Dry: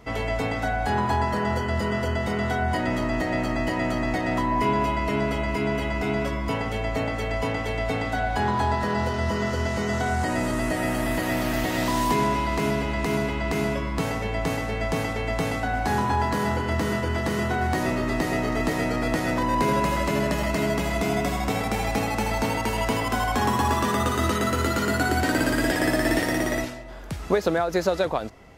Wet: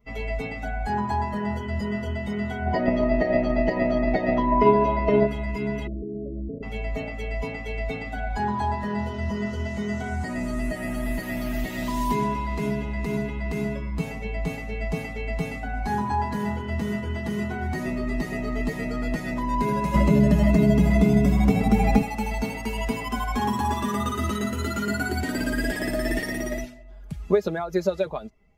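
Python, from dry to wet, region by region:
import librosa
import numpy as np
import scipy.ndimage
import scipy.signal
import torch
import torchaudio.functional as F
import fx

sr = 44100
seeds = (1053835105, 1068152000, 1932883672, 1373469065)

y = fx.chain(x, sr, fx.lowpass(hz=5800.0, slope=24),
    fx.peak_eq(hz=520.0, db=8.5, octaves=1.3),
    fx.transient(attack_db=10, sustain_db=4), at=(2.66, 5.27))
y = fx.chain(y, sr, fx.cheby1_lowpass(hz=630.0, order=6),
    fx.peak_eq(hz=340.0, db=11.5, octaves=0.44),
    fx.level_steps(step_db=14), at=(5.87, 6.63))
y = fx.chain(y, sr, fx.highpass(hz=53.0, slope=12),
    fx.low_shelf(hz=450.0, db=7.5),
    fx.band_squash(depth_pct=100), at=(19.94, 22.02))
y = fx.bin_expand(y, sr, power=1.5)
y = fx.low_shelf(y, sr, hz=300.0, db=8.0)
y = y + 0.65 * np.pad(y, (int(4.9 * sr / 1000.0), 0))[:len(y)]
y = y * 10.0 ** (-3.0 / 20.0)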